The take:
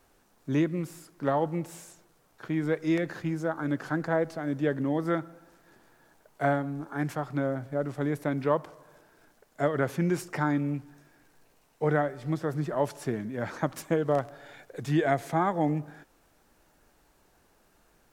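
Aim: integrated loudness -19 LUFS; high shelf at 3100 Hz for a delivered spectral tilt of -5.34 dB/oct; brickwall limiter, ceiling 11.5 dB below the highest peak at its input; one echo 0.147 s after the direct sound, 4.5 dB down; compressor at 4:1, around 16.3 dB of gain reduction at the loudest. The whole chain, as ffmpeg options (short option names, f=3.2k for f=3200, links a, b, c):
-af "highshelf=f=3.1k:g=6.5,acompressor=threshold=-41dB:ratio=4,alimiter=level_in=12dB:limit=-24dB:level=0:latency=1,volume=-12dB,aecho=1:1:147:0.596,volume=26.5dB"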